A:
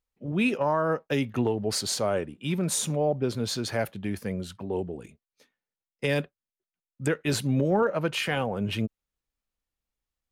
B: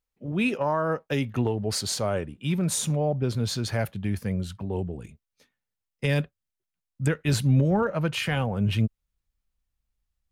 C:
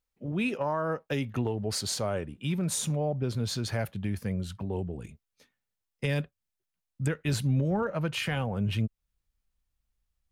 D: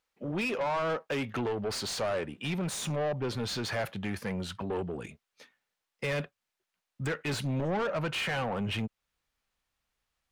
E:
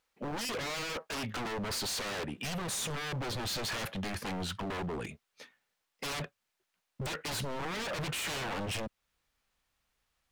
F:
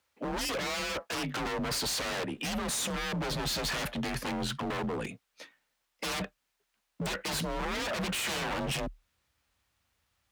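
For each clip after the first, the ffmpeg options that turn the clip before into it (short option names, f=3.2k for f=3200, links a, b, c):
-af "asubboost=boost=3.5:cutoff=170"
-af "acompressor=threshold=-33dB:ratio=1.5"
-filter_complex "[0:a]asplit=2[a][b];[b]highpass=f=720:p=1,volume=25dB,asoftclip=type=tanh:threshold=-15dB[c];[a][c]amix=inputs=2:normalize=0,lowpass=f=2.8k:p=1,volume=-6dB,volume=-7.5dB"
-af "aeval=exprs='0.02*(abs(mod(val(0)/0.02+3,4)-2)-1)':c=same,volume=3dB"
-af "afreqshift=37,volume=3dB"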